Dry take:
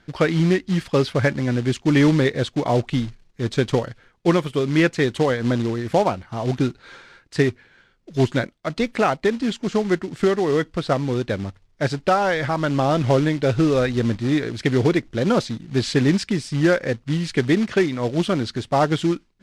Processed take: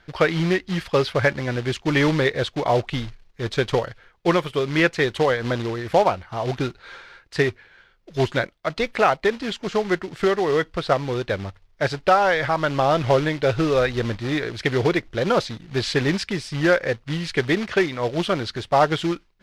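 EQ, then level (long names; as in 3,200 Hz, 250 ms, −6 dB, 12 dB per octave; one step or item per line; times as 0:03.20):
graphic EQ with 10 bands 125 Hz −5 dB, 250 Hz −10 dB, 8,000 Hz −7 dB
+3.0 dB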